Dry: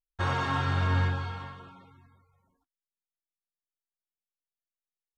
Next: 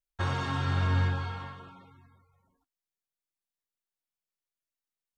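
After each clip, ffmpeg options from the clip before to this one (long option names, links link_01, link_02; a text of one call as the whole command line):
ffmpeg -i in.wav -filter_complex "[0:a]acrossover=split=370|3000[link_01][link_02][link_03];[link_02]acompressor=threshold=-33dB:ratio=6[link_04];[link_01][link_04][link_03]amix=inputs=3:normalize=0" out.wav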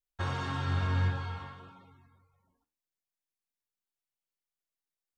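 ffmpeg -i in.wav -af "flanger=delay=8.6:depth=5.3:regen=83:speed=1.7:shape=triangular,volume=1.5dB" out.wav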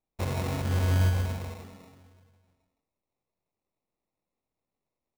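ffmpeg -i in.wav -af "aecho=1:1:164:0.501,acrusher=samples=28:mix=1:aa=0.000001,volume=2.5dB" out.wav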